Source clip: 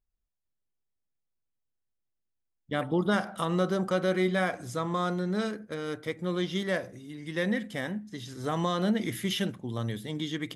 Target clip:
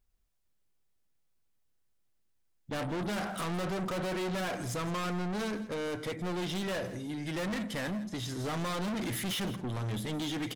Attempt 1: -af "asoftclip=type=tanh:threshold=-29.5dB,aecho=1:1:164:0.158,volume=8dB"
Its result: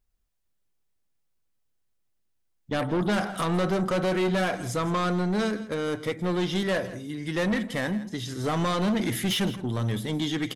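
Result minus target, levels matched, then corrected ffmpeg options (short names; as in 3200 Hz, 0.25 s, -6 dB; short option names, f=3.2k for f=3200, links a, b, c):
soft clip: distortion -5 dB
-af "asoftclip=type=tanh:threshold=-40.5dB,aecho=1:1:164:0.158,volume=8dB"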